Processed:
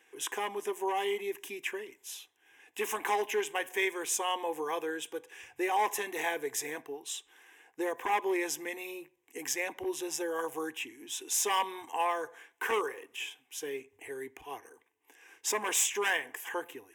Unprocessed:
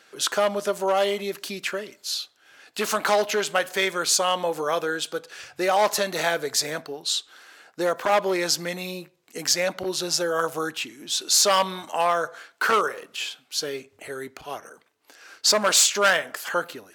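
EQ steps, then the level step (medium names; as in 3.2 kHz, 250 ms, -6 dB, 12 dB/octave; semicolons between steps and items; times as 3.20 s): static phaser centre 900 Hz, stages 8; -5.0 dB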